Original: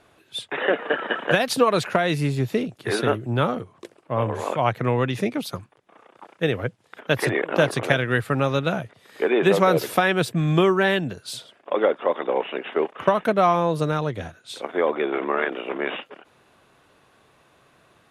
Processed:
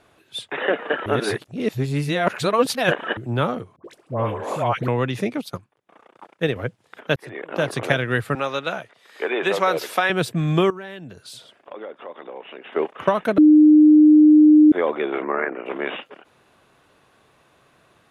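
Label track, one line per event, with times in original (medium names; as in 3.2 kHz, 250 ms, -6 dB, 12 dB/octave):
1.060000	3.170000	reverse
3.760000	4.880000	phase dispersion highs, late by 85 ms, half as late at 940 Hz
5.380000	6.560000	transient shaper attack +1 dB, sustain -10 dB
7.160000	7.850000	fade in
8.350000	10.100000	frequency weighting A
10.700000	12.730000	compression 2.5:1, threshold -39 dBFS
13.380000	14.720000	bleep 304 Hz -7.5 dBFS
15.220000	15.660000	steep low-pass 2.3 kHz 48 dB/octave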